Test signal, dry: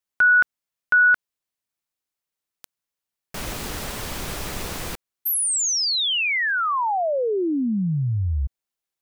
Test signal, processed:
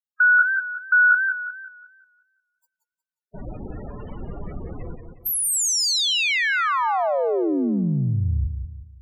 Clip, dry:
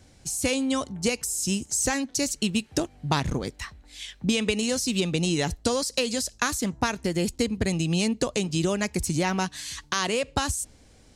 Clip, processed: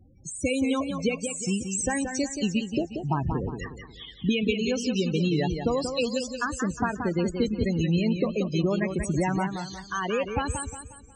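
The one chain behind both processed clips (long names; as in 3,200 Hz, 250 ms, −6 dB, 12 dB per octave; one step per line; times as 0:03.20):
spectral peaks only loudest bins 16
feedback echo with a swinging delay time 180 ms, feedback 40%, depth 111 cents, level −7 dB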